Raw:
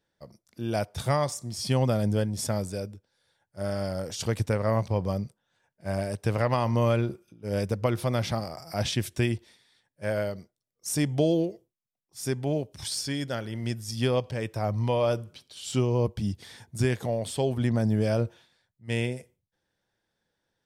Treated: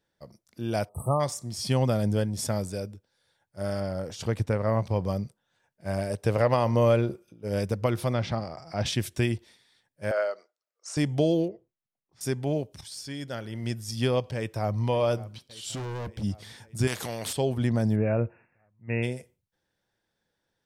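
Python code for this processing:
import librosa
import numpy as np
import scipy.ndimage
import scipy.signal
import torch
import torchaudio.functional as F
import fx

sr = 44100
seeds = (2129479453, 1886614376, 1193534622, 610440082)

y = fx.spec_erase(x, sr, start_s=0.89, length_s=0.31, low_hz=1300.0, high_hz=7800.0)
y = fx.high_shelf(y, sr, hz=3500.0, db=-8.5, at=(3.8, 4.86))
y = fx.peak_eq(y, sr, hz=520.0, db=5.5, octaves=0.77, at=(6.1, 7.48))
y = fx.air_absorb(y, sr, metres=120.0, at=(8.13, 8.86))
y = fx.cabinet(y, sr, low_hz=450.0, low_slope=24, high_hz=6900.0, hz=(620.0, 1300.0, 3400.0, 5800.0), db=(4, 10, -7, -4), at=(10.11, 10.97))
y = fx.lowpass(y, sr, hz=2000.0, slope=12, at=(11.48, 12.21))
y = fx.echo_throw(y, sr, start_s=14.35, length_s=0.46, ms=570, feedback_pct=65, wet_db=-17.0)
y = fx.clip_hard(y, sr, threshold_db=-32.5, at=(15.74, 16.22), fade=0.02)
y = fx.spectral_comp(y, sr, ratio=2.0, at=(16.87, 17.33))
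y = fx.brickwall_lowpass(y, sr, high_hz=2800.0, at=(17.95, 19.02), fade=0.02)
y = fx.edit(y, sr, fx.fade_in_from(start_s=12.81, length_s=0.94, floor_db=-12.0), tone=tone)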